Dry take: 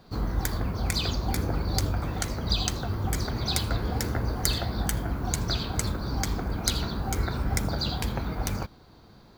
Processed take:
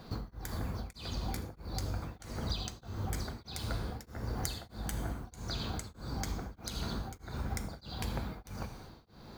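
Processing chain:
downward compressor 10 to 1, threshold −36 dBFS, peak gain reduction 16.5 dB
reverb whose tail is shaped and stops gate 420 ms falling, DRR 8 dB
tremolo along a rectified sine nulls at 1.6 Hz
level +3.5 dB

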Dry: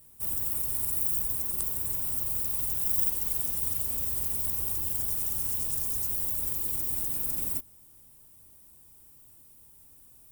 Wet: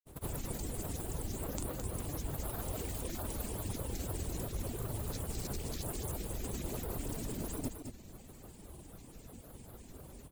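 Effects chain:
drawn EQ curve 160 Hz 0 dB, 490 Hz +4 dB, 1,200 Hz −5 dB, 6,900 Hz −5 dB, 15,000 Hz −24 dB
granular cloud, pitch spread up and down by 7 semitones
parametric band 5,700 Hz −6.5 dB 0.62 octaves
reversed playback
downward compressor 4 to 1, threshold −53 dBFS, peak gain reduction 12 dB
reversed playback
reverb reduction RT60 0.72 s
on a send: single-tap delay 215 ms −7 dB
on the sum: level +17 dB

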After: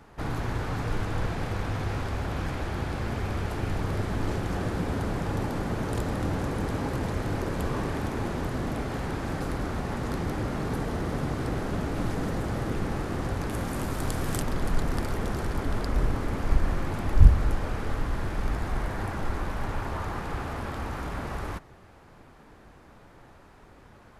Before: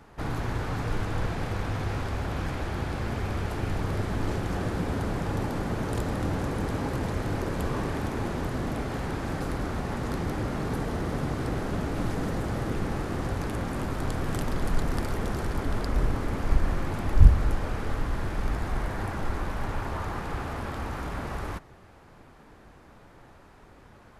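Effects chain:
0:13.50–0:14.40: high-shelf EQ 8,200 Hz → 5,100 Hz +10 dB

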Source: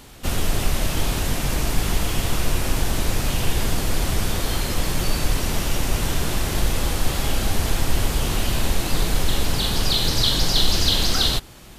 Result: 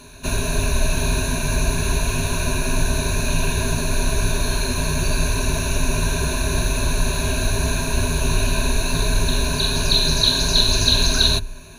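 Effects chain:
EQ curve with evenly spaced ripples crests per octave 1.5, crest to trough 18 dB
level −1.5 dB

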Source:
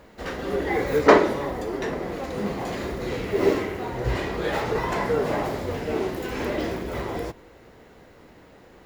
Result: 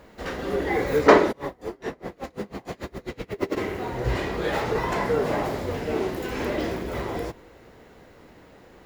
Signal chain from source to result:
0:01.31–0:03.56: tremolo with a sine in dB 4.1 Hz → 10 Hz, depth 29 dB

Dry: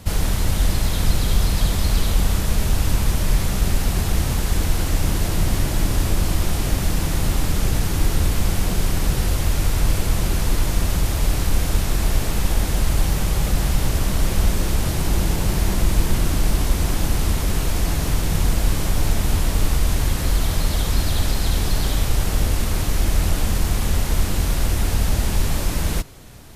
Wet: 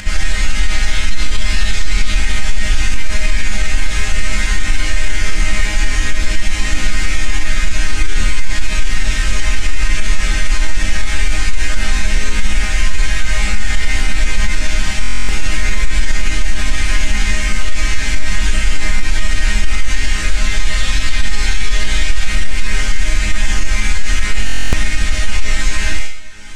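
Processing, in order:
high-frequency loss of the air 120 metres
resonators tuned to a chord G#3 major, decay 0.56 s
upward compression, threshold −50 dBFS
graphic EQ with 10 bands 125 Hz −8 dB, 250 Hz −9 dB, 500 Hz −11 dB, 1,000 Hz −9 dB, 2,000 Hz +9 dB, 4,000 Hz −3 dB, 8,000 Hz +8 dB
buffer that repeats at 0:15.01/0:24.45, samples 1,024, times 11
boost into a limiter +32 dB
level −1 dB

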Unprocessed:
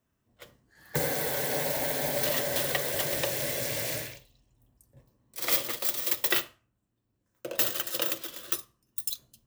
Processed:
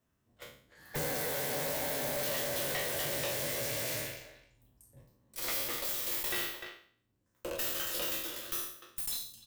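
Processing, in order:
peak hold with a decay on every bin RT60 0.51 s
far-end echo of a speakerphone 300 ms, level −16 dB
tube saturation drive 31 dB, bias 0.5

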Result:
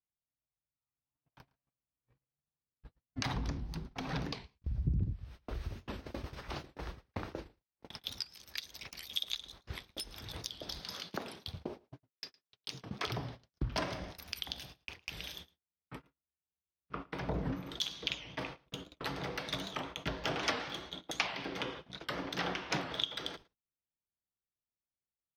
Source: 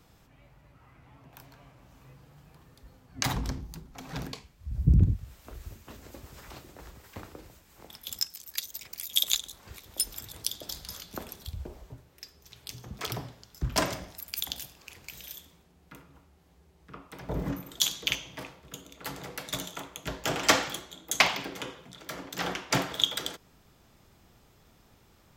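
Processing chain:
0:10.81–0:13.05: high-pass filter 170 Hz 12 dB per octave
noise gate −47 dBFS, range −52 dB
downward compressor 3 to 1, threshold −43 dBFS, peak gain reduction 20 dB
Savitzky-Golay smoothing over 15 samples
single-tap delay 111 ms −24 dB
wow of a warped record 78 rpm, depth 160 cents
level +7 dB

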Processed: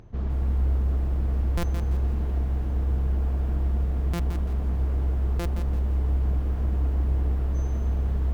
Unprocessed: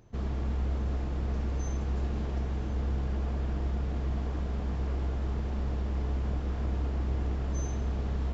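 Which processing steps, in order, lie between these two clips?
upward compression, threshold −45 dBFS
low-pass filter 2,100 Hz 6 dB per octave
low-shelf EQ 93 Hz +7.5 dB
buffer that repeats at 0:01.57/0:04.13/0:05.39, samples 256, times 10
feedback echo at a low word length 169 ms, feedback 35%, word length 9 bits, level −8 dB

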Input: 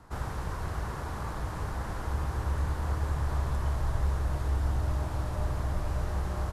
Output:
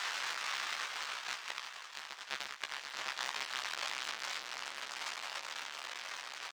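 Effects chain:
sign of each sample alone
source passing by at 0:02.46, 32 m/s, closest 28 metres
high-pass filter 1,300 Hz 12 dB per octave
high-shelf EQ 3,400 Hz +12 dB
compressor whose output falls as the input rises −38 dBFS, ratio −0.5
high-frequency loss of the air 160 metres
double-tracking delay 14 ms −5.5 dB
level +3.5 dB

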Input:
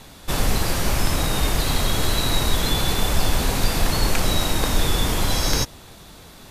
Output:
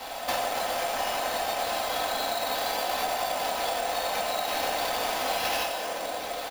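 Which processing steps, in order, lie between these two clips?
high-pass with resonance 680 Hz, resonance Q 4.9
convolution reverb RT60 1.9 s, pre-delay 5 ms, DRR −5.5 dB
downward compressor 6 to 1, threshold −28 dBFS, peak gain reduction 17.5 dB
high-shelf EQ 9,300 Hz +6.5 dB, from 0:04.48 +12 dB
sample-rate reduction 8,100 Hz, jitter 0%
comb filter 3.9 ms, depth 45%

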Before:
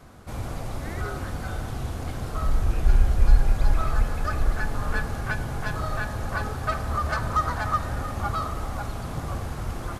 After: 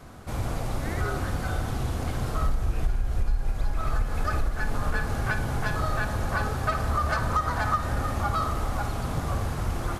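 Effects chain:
downward compressor 10 to 1, threshold −23 dBFS, peak gain reduction 14.5 dB
on a send: flutter between parallel walls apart 9.9 metres, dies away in 0.29 s
on the sum: level +2.5 dB

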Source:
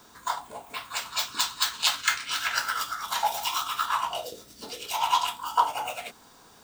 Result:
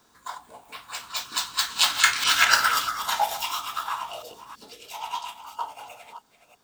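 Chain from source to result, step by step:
delay that plays each chunk backwards 326 ms, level −10.5 dB
source passing by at 0:02.42, 7 m/s, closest 2.5 metres
level +9 dB

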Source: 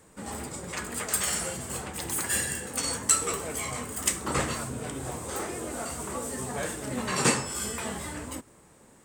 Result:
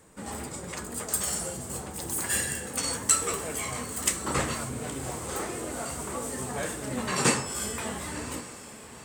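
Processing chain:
0:00.74–0:02.22: parametric band 2,200 Hz −8.5 dB 1.6 octaves
feedback delay with all-pass diffusion 1,044 ms, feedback 46%, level −14 dB

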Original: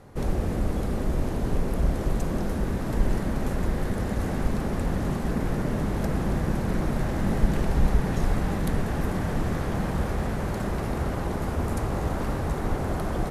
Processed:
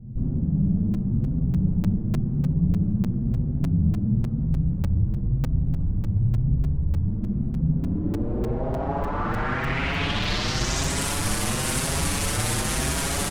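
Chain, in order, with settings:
parametric band 840 Hz +6 dB 2.4 octaves
feedback echo with a high-pass in the loop 93 ms, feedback 77%, high-pass 240 Hz, level −13 dB
wrap-around overflow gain 23 dB
low-pass filter sweep 190 Hz → 9,900 Hz, 0:07.66–0:11.07
0:04.45–0:07.08: frequency shifter −66 Hz
bass and treble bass +13 dB, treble +4 dB
repeating echo 62 ms, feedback 29%, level −3 dB
regular buffer underruns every 0.30 s, samples 128, zero, from 0:00.94
barber-pole flanger 6.2 ms +0.96 Hz
level −1 dB

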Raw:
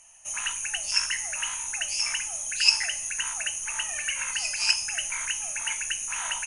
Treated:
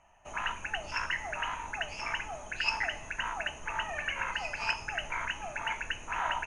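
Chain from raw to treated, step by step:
in parallel at −10.5 dB: bit reduction 6 bits
on the sum: low-pass filter 1,200 Hz 12 dB per octave
level +6 dB

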